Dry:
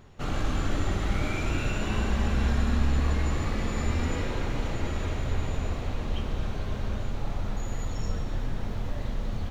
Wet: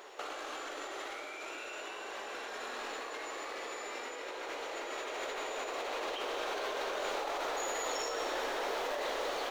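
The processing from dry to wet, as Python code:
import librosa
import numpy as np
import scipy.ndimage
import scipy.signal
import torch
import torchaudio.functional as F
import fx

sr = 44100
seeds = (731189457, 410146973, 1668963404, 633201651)

y = scipy.signal.sosfilt(scipy.signal.cheby2(4, 40, 200.0, 'highpass', fs=sr, output='sos'), x)
y = fx.over_compress(y, sr, threshold_db=-44.0, ratio=-1.0)
y = y * 10.0 ** (4.5 / 20.0)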